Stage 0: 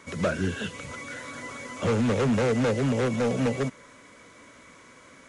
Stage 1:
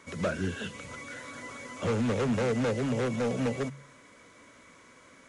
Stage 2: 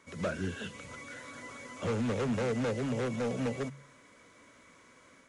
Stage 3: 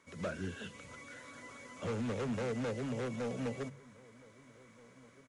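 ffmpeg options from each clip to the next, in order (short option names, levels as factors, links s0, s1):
-af "bandreject=f=69.09:t=h:w=4,bandreject=f=138.18:t=h:w=4,bandreject=f=207.27:t=h:w=4,volume=0.631"
-af "dynaudnorm=f=100:g=3:m=1.5,volume=0.447"
-filter_complex "[0:a]asplit=2[s0][s1];[s1]adelay=1574,volume=0.0794,highshelf=f=4000:g=-35.4[s2];[s0][s2]amix=inputs=2:normalize=0,volume=0.562"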